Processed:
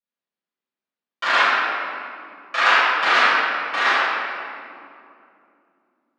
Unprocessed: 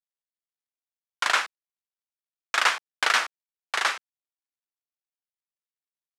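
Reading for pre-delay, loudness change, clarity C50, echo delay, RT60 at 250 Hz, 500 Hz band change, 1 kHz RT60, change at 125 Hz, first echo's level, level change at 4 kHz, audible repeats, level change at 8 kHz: 5 ms, +6.5 dB, −5.0 dB, no echo audible, 4.0 s, +11.0 dB, 2.4 s, can't be measured, no echo audible, +4.5 dB, no echo audible, −6.5 dB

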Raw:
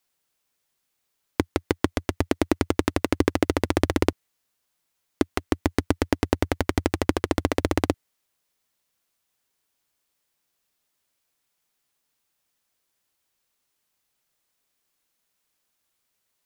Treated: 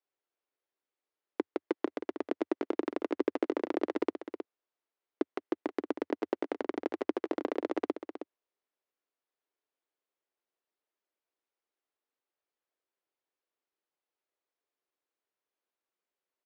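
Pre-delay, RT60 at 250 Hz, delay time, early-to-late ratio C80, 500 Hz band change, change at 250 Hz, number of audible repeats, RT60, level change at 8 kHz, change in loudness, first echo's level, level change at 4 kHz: no reverb audible, no reverb audible, 316 ms, no reverb audible, −6.5 dB, −9.5 dB, 1, no reverb audible, below −25 dB, −9.5 dB, −10.0 dB, −18.0 dB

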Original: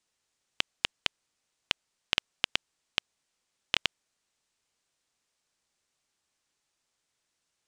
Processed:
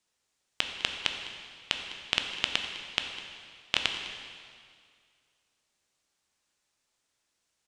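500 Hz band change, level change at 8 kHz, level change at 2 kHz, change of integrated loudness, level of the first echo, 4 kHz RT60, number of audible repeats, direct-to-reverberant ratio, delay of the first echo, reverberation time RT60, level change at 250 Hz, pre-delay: +1.5 dB, +1.5 dB, +1.5 dB, +0.5 dB, −17.0 dB, 2.0 s, 1, 3.5 dB, 204 ms, 2.1 s, +2.0 dB, 6 ms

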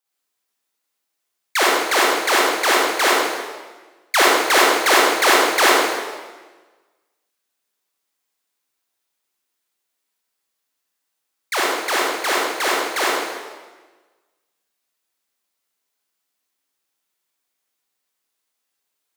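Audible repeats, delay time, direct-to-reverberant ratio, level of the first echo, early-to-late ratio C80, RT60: no echo audible, no echo audible, −6.0 dB, no echo audible, 0.0 dB, 1.3 s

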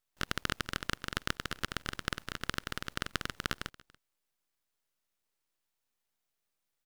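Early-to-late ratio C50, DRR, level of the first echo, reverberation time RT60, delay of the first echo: no reverb audible, no reverb audible, −23.5 dB, no reverb audible, 285 ms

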